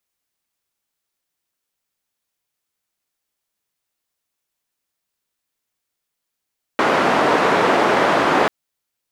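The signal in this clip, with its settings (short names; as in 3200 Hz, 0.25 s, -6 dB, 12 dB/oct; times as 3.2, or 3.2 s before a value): noise band 250–1100 Hz, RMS -16 dBFS 1.69 s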